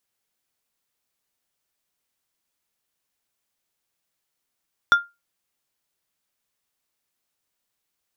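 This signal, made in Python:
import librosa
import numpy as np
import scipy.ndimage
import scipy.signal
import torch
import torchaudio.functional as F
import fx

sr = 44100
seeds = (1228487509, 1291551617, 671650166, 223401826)

y = fx.strike_glass(sr, length_s=0.89, level_db=-7.5, body='plate', hz=1400.0, decay_s=0.22, tilt_db=11.5, modes=5)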